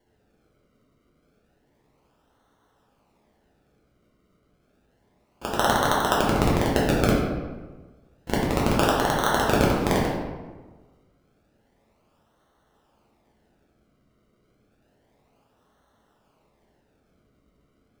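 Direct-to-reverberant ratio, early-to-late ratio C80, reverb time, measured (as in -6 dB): -5.5 dB, 3.5 dB, 1.3 s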